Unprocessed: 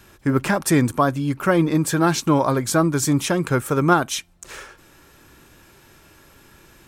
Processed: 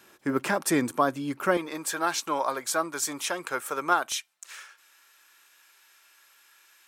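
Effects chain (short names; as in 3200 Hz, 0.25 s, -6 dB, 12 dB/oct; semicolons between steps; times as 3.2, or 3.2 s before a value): HPF 270 Hz 12 dB/oct, from 1.57 s 640 Hz, from 4.12 s 1400 Hz; gain -4.5 dB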